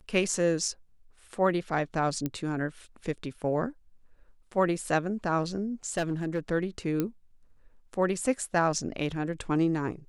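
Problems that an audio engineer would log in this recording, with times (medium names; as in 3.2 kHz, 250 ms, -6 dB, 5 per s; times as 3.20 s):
2.26 s: pop -17 dBFS
5.90–6.39 s: clipped -23.5 dBFS
7.00 s: pop -15 dBFS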